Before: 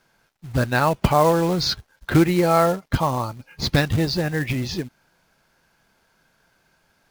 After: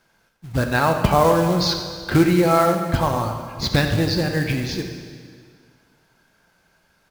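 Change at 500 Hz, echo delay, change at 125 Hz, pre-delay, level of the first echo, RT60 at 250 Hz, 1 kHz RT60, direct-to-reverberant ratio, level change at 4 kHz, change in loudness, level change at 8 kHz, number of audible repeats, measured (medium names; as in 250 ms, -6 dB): +1.5 dB, 89 ms, +1.0 dB, 5 ms, -12.0 dB, 2.0 s, 2.0 s, 4.0 dB, +1.5 dB, +1.5 dB, +1.5 dB, 1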